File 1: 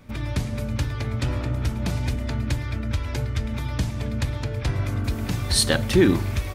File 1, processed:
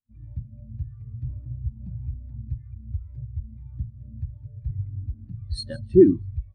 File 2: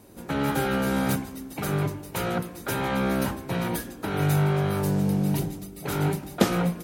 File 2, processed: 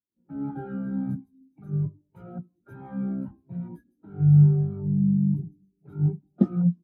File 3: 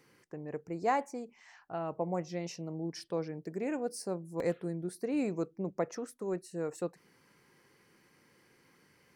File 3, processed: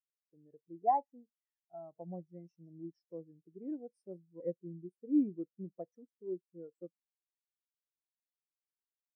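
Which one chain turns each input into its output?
dynamic bell 480 Hz, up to -4 dB, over -46 dBFS, Q 3.9; feedback echo behind a high-pass 159 ms, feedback 59%, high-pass 3.9 kHz, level -7 dB; spectral contrast expander 2.5:1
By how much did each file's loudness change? -2.0 LU, +2.0 LU, -2.5 LU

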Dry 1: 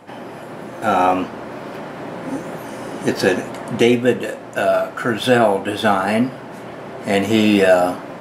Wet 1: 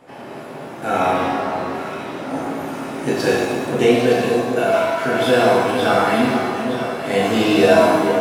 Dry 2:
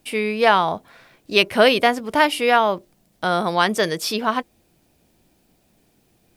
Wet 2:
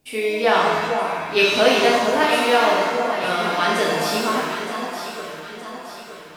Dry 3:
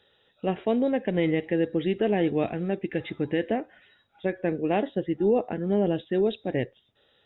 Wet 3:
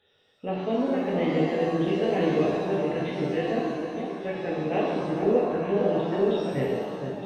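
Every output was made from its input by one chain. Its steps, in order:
echo whose repeats swap between lows and highs 459 ms, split 1.3 kHz, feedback 69%, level -6 dB; pitch-shifted reverb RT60 1.2 s, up +7 st, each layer -8 dB, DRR -4.5 dB; trim -6.5 dB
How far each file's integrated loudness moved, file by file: 0.0 LU, 0.0 LU, +0.5 LU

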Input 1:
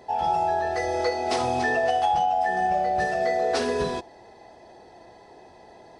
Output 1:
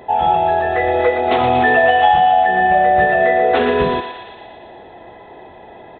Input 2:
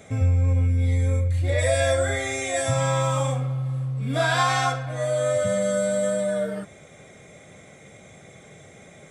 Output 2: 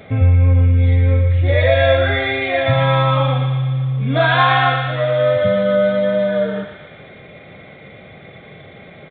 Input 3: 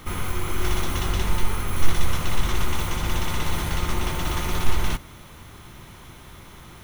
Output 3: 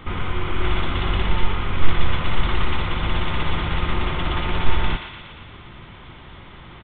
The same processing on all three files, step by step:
resampled via 8 kHz; thinning echo 117 ms, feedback 71%, high-pass 1 kHz, level -5.5 dB; peak normalisation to -1.5 dBFS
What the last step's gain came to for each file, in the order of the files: +10.0 dB, +8.0 dB, +2.5 dB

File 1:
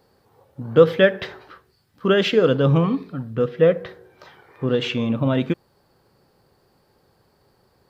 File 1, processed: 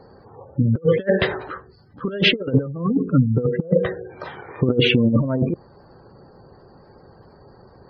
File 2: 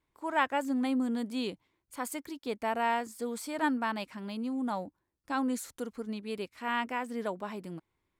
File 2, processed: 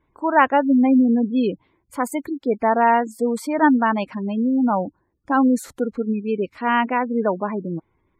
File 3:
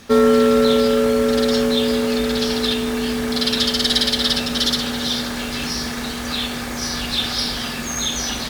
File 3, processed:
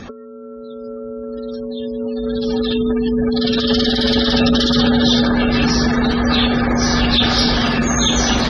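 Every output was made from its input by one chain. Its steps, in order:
spectral gate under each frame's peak -20 dB strong; treble shelf 2.4 kHz -10 dB; compressor with a negative ratio -25 dBFS, ratio -0.5; peak normalisation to -3 dBFS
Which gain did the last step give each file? +7.5 dB, +14.5 dB, +8.5 dB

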